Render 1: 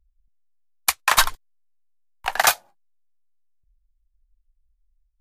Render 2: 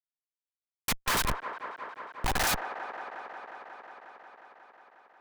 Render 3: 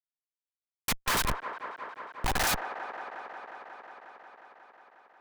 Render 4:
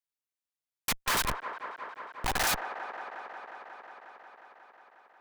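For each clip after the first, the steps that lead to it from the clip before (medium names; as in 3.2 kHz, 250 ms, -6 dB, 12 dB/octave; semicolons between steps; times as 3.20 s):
Schmitt trigger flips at -33 dBFS; feedback echo behind a band-pass 180 ms, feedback 83%, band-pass 830 Hz, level -7 dB; trim +1.5 dB
no audible change
bass shelf 350 Hz -4.5 dB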